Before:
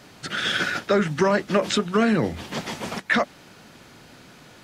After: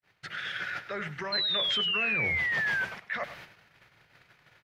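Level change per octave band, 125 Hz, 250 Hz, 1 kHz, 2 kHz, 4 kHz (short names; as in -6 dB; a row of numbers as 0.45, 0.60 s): -13.0, -20.0, -12.0, -2.0, +1.0 dB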